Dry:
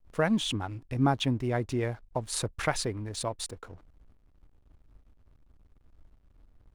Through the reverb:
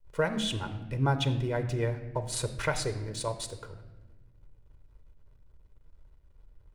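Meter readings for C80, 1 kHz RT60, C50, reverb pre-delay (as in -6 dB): 12.5 dB, 1.0 s, 11.0 dB, 7 ms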